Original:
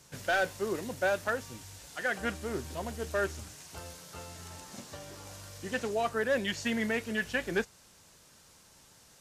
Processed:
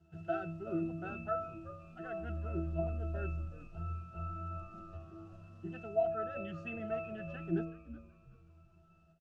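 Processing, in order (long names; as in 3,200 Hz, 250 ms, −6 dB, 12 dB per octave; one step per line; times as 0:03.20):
resonances in every octave E, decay 0.59 s
echo with shifted repeats 375 ms, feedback 31%, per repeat −100 Hz, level −15 dB
every ending faded ahead of time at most 150 dB per second
level +15.5 dB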